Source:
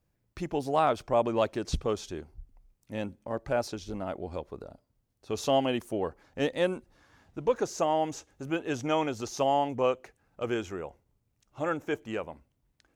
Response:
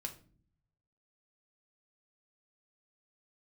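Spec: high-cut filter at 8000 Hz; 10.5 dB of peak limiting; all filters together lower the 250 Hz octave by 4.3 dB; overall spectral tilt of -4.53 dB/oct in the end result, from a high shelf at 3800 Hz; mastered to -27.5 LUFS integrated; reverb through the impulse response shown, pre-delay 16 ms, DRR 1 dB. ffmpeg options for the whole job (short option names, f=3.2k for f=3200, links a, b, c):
-filter_complex "[0:a]lowpass=8k,equalizer=f=250:t=o:g=-6,highshelf=f=3.8k:g=3,alimiter=limit=-23dB:level=0:latency=1,asplit=2[a][b];[1:a]atrim=start_sample=2205,adelay=16[c];[b][c]afir=irnorm=-1:irlink=0,volume=1dB[d];[a][d]amix=inputs=2:normalize=0,volume=5.5dB"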